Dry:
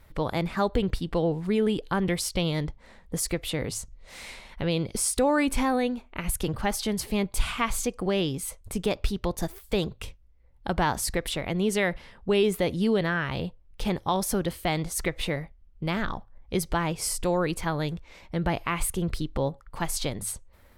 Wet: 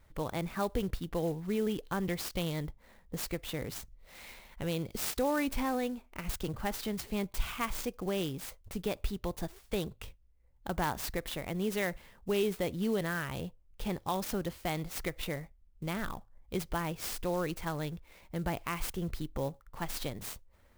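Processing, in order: sampling jitter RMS 0.029 ms; trim -7.5 dB

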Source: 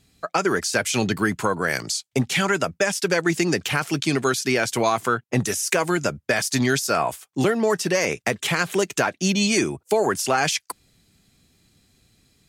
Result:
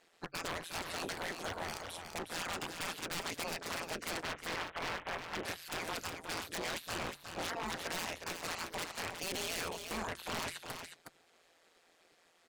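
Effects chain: 4.23–5.45 s: CVSD coder 16 kbps; spectral gate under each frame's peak -15 dB weak; low-pass 1.2 kHz 6 dB/octave; bass shelf 120 Hz -9.5 dB; de-hum 70.08 Hz, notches 2; in parallel at -2 dB: compression, threshold -48 dBFS, peak gain reduction 17.5 dB; on the sum: wavefolder -35 dBFS; AM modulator 170 Hz, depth 80%; on a send: delay 364 ms -7 dB; on the sum: trim +5 dB

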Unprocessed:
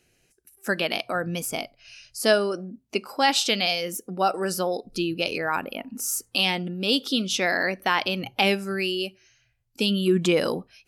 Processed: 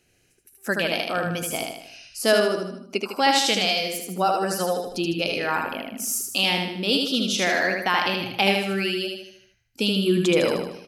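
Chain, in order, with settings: feedback delay 77 ms, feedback 48%, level -3.5 dB

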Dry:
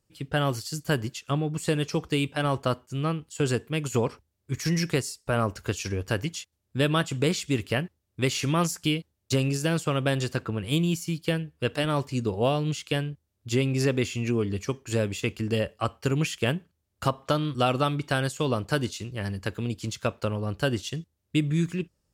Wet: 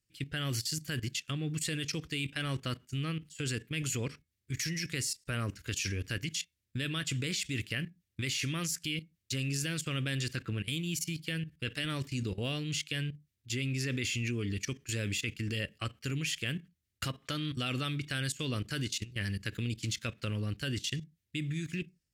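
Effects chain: FFT filter 120 Hz 0 dB, 310 Hz -2 dB, 880 Hz -14 dB, 1.9 kHz +7 dB, 9.6 kHz +4 dB; level held to a coarse grid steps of 17 dB; on a send: reverberation RT60 0.25 s, pre-delay 3 ms, DRR 21 dB

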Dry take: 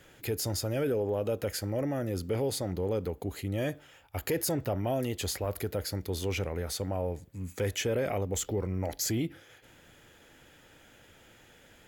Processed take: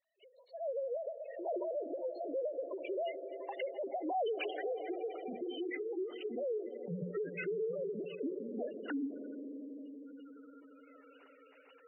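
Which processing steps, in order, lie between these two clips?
formants replaced by sine waves; Doppler pass-by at 4.36 s, 54 m/s, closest 8.2 m; recorder AGC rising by 29 dB/s; hum notches 60/120/180/240/300/360 Hz; echo with a slow build-up 85 ms, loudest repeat 5, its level -15.5 dB; hard clipper -34.5 dBFS, distortion -20 dB; thinning echo 1165 ms, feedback 68%, high-pass 560 Hz, level -21.5 dB; spectral gate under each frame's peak -15 dB strong; endings held to a fixed fall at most 140 dB/s; trim +4 dB

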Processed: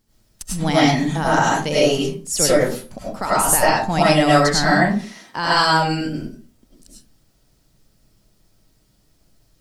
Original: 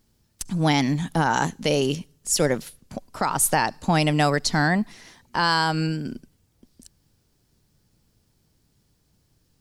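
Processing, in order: 4.81–5.37 s: high-pass 160 Hz; reverberation RT60 0.40 s, pre-delay 60 ms, DRR -8.5 dB; trim -2.5 dB

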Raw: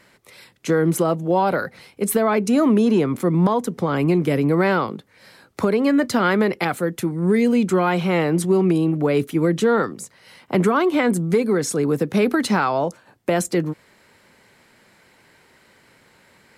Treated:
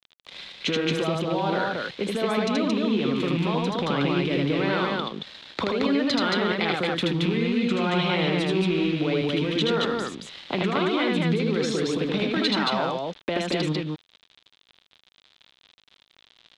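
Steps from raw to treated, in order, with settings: rattle on loud lows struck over -20 dBFS, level -22 dBFS; peaking EQ 110 Hz -13 dB 0.24 oct; in parallel at -2 dB: level held to a coarse grid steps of 14 dB; on the sum: peak limiter -12.5 dBFS, peak gain reduction 6 dB; compression, threshold -25 dBFS, peak gain reduction 9 dB; small samples zeroed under -40.5 dBFS; resonant low-pass 3.6 kHz, resonance Q 4.4; loudspeakers at several distances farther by 27 m -2 dB, 77 m -2 dB

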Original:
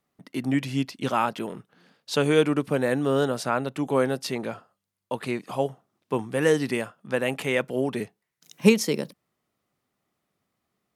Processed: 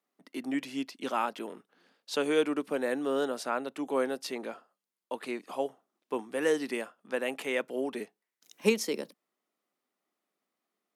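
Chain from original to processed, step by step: high-pass 240 Hz 24 dB/octave; trim -6 dB

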